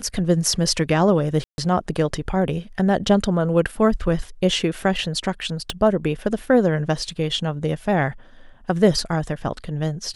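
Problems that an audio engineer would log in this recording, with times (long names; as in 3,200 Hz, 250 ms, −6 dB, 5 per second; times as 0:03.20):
0:01.44–0:01.58: drop-out 141 ms
0:05.70: click −10 dBFS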